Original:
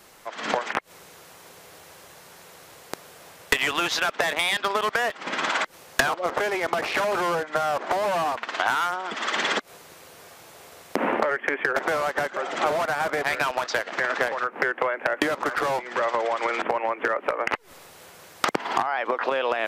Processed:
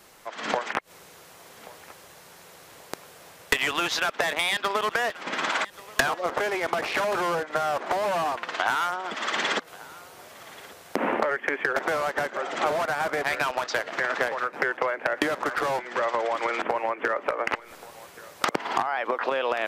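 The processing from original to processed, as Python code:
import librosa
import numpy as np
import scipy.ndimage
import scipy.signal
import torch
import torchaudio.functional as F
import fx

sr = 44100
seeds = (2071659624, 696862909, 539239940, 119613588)

y = fx.echo_feedback(x, sr, ms=1132, feedback_pct=37, wet_db=-20.5)
y = F.gain(torch.from_numpy(y), -1.5).numpy()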